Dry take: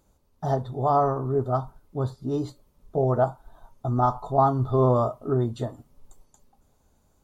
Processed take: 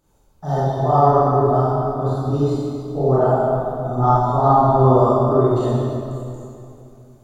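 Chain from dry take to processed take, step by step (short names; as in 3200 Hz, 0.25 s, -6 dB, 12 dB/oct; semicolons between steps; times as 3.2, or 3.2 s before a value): notches 60/120 Hz; reverb RT60 2.6 s, pre-delay 22 ms, DRR -11 dB; gain -3 dB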